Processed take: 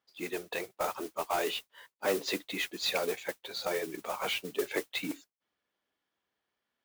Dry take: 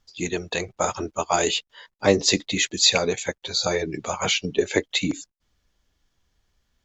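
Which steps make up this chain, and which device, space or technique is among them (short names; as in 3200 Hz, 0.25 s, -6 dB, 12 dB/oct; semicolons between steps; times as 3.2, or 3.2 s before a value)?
carbon microphone (BPF 320–3000 Hz; soft clip -15.5 dBFS, distortion -13 dB; modulation noise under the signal 12 dB); gain -6.5 dB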